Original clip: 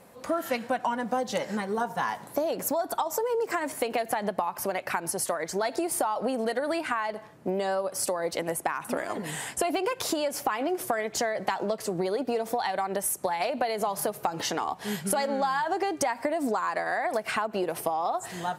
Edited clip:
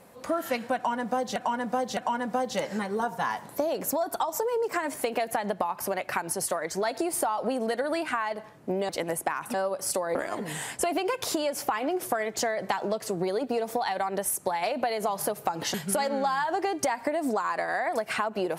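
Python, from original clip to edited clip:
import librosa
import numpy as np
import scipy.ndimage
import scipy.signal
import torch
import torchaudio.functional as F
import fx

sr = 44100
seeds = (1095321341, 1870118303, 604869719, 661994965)

y = fx.edit(x, sr, fx.repeat(start_s=0.75, length_s=0.61, count=3),
    fx.move(start_s=7.67, length_s=0.61, to_s=8.93),
    fx.cut(start_s=14.52, length_s=0.4), tone=tone)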